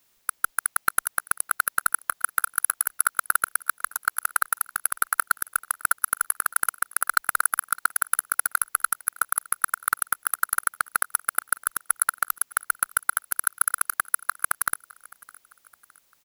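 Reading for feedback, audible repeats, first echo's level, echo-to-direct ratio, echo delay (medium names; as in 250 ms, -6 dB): 46%, 2, -23.0 dB, -22.0 dB, 612 ms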